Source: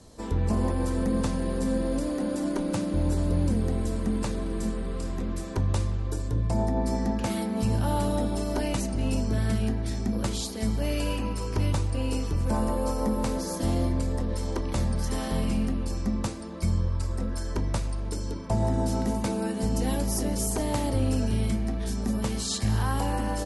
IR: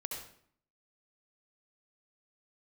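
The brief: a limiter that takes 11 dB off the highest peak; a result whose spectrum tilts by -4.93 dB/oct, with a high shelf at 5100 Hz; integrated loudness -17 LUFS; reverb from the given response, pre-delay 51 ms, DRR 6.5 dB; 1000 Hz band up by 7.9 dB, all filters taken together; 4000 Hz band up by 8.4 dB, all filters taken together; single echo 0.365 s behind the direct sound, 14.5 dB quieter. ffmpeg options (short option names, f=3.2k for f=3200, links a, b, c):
-filter_complex "[0:a]equalizer=f=1k:t=o:g=9,equalizer=f=4k:t=o:g=8,highshelf=f=5.1k:g=4.5,alimiter=limit=-21dB:level=0:latency=1,aecho=1:1:365:0.188,asplit=2[a][b];[1:a]atrim=start_sample=2205,adelay=51[c];[b][c]afir=irnorm=-1:irlink=0,volume=-6.5dB[d];[a][d]amix=inputs=2:normalize=0,volume=12.5dB"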